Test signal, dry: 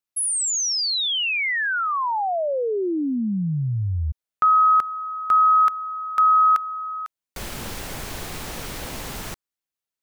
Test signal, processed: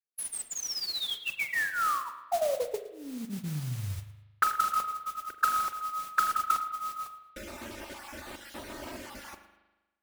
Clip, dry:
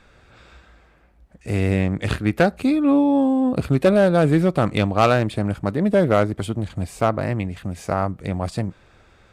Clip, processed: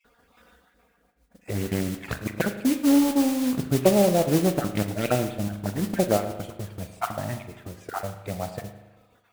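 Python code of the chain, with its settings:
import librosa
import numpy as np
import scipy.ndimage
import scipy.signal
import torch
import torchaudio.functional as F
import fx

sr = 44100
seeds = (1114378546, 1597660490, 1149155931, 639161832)

p1 = fx.spec_dropout(x, sr, seeds[0], share_pct=28)
p2 = fx.highpass(p1, sr, hz=190.0, slope=6)
p3 = fx.high_shelf(p2, sr, hz=2700.0, db=-8.0)
p4 = fx.transient(p3, sr, attack_db=3, sustain_db=-2)
p5 = fx.env_flanger(p4, sr, rest_ms=4.3, full_db=-14.5)
p6 = p5 + fx.echo_feedback(p5, sr, ms=108, feedback_pct=26, wet_db=-18.5, dry=0)
p7 = fx.mod_noise(p6, sr, seeds[1], snr_db=12)
p8 = fx.rev_spring(p7, sr, rt60_s=1.1, pass_ms=(39,), chirp_ms=25, drr_db=8.5)
p9 = fx.doppler_dist(p8, sr, depth_ms=0.29)
y = p9 * librosa.db_to_amplitude(-2.0)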